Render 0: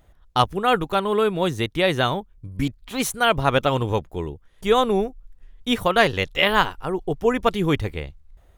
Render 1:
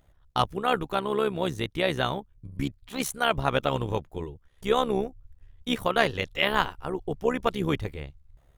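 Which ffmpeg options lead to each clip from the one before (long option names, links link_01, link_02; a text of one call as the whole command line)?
ffmpeg -i in.wav -af "tremolo=f=69:d=0.667,volume=-3dB" out.wav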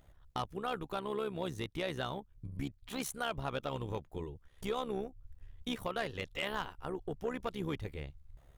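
ffmpeg -i in.wav -af "acompressor=threshold=-40dB:ratio=2,asoftclip=type=tanh:threshold=-25.5dB" out.wav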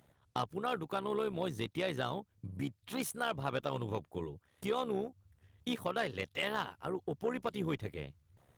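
ffmpeg -i in.wav -af "highpass=frequency=95:width=0.5412,highpass=frequency=95:width=1.3066,volume=2dB" -ar 48000 -c:a libopus -b:a 20k out.opus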